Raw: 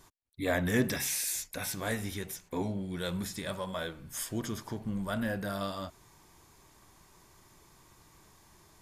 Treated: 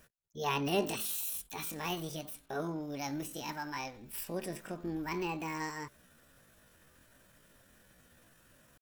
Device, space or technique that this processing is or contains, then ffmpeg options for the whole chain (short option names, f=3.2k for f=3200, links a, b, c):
chipmunk voice: -af "asetrate=70004,aresample=44100,atempo=0.629961,volume=-3dB"